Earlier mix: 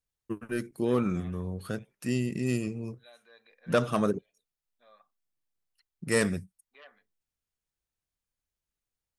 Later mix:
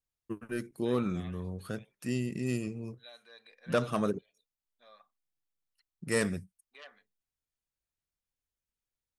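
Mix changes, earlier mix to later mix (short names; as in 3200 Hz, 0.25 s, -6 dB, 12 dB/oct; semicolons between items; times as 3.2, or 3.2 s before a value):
first voice -3.5 dB; second voice: remove air absorption 240 m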